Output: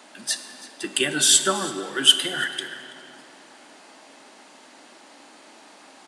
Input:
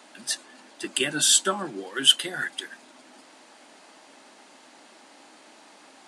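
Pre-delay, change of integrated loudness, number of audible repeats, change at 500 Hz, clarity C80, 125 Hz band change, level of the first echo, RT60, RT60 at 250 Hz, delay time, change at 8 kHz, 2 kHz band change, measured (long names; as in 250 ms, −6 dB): 17 ms, +2.5 dB, 1, +3.5 dB, 10.0 dB, +2.5 dB, −19.0 dB, 2.9 s, 2.9 s, 330 ms, +3.0 dB, +3.0 dB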